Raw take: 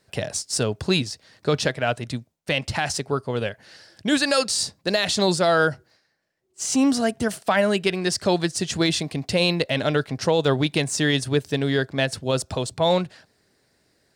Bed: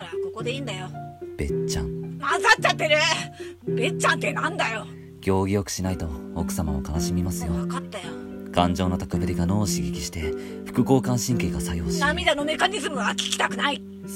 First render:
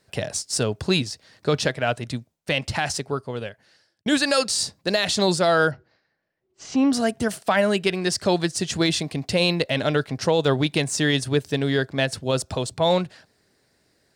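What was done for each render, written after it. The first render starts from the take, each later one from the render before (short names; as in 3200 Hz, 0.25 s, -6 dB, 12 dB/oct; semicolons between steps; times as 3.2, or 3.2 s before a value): 2.86–4.06 fade out; 5.71–6.93 air absorption 200 m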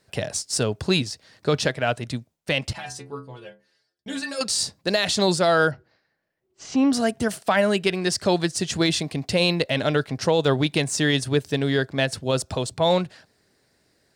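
2.73–4.41 metallic resonator 64 Hz, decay 0.46 s, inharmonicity 0.008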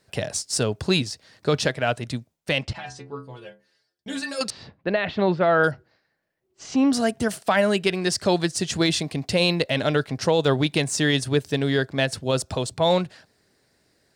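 2.62–3.2 air absorption 100 m; 4.5–5.64 LPF 2600 Hz 24 dB/oct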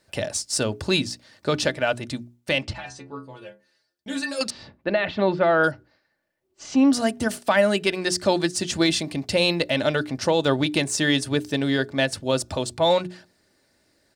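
notches 60/120/180/240/300/360/420 Hz; comb 3.4 ms, depth 35%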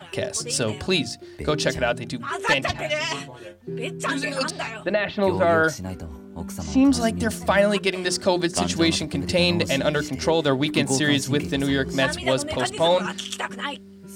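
add bed -6 dB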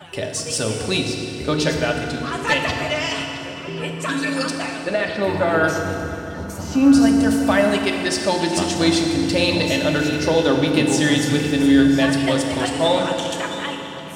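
delay with a stepping band-pass 0.662 s, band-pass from 3200 Hz, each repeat -1.4 oct, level -11 dB; FDN reverb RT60 3.1 s, low-frequency decay 1.2×, high-frequency decay 0.75×, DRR 1.5 dB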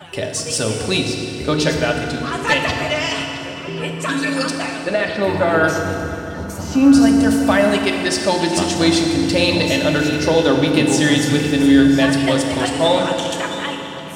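gain +2.5 dB; limiter -2 dBFS, peak gain reduction 1.5 dB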